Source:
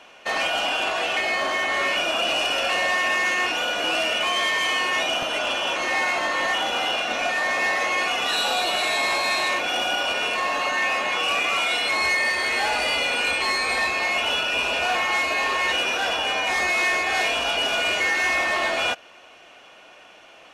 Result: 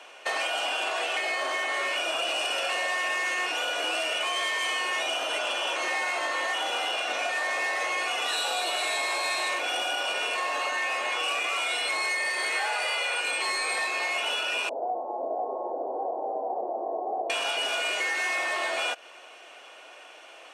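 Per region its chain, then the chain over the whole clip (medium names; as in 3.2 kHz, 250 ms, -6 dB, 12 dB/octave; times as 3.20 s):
12.55–13.21 s: high-pass 350 Hz 24 dB/octave + peaking EQ 1.4 kHz +5 dB 1.8 oct
14.69–17.30 s: steep low-pass 820 Hz 48 dB/octave + delay 501 ms -4 dB
whole clip: compression, threshold -26 dBFS; high-pass 330 Hz 24 dB/octave; peaking EQ 8.5 kHz +8.5 dB 0.31 oct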